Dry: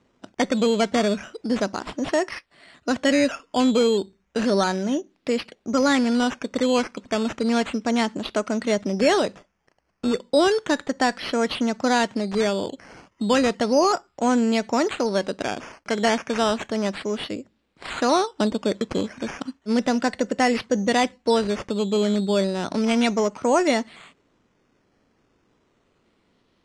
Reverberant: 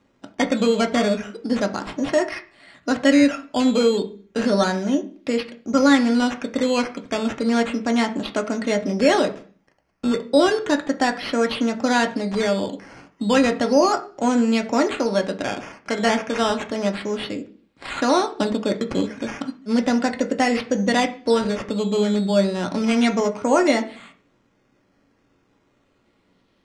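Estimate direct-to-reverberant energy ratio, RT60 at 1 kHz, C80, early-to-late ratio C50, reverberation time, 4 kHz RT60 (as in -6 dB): 3.0 dB, 0.40 s, 19.0 dB, 14.5 dB, 0.45 s, 0.45 s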